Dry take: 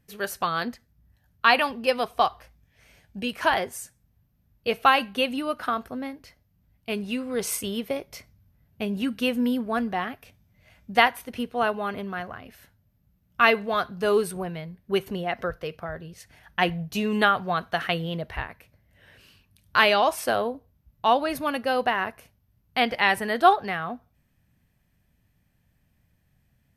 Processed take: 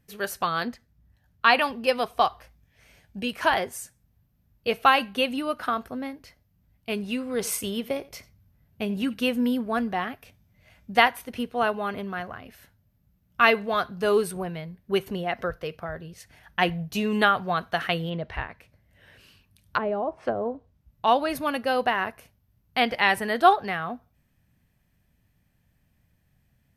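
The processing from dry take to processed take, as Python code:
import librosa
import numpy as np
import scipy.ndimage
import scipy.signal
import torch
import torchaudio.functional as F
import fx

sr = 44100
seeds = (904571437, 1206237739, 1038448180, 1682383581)

y = fx.high_shelf(x, sr, hz=8400.0, db=-6.0, at=(0.67, 1.62))
y = fx.echo_single(y, sr, ms=87, db=-20.5, at=(7.3, 9.14))
y = fx.env_lowpass_down(y, sr, base_hz=490.0, full_db=-19.0, at=(18.09, 21.06), fade=0.02)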